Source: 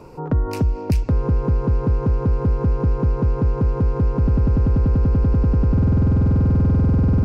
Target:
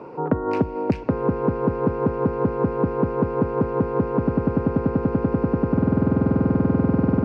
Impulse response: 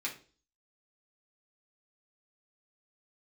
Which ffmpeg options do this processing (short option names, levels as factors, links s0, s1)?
-af "highpass=230,lowpass=2000,volume=1.88"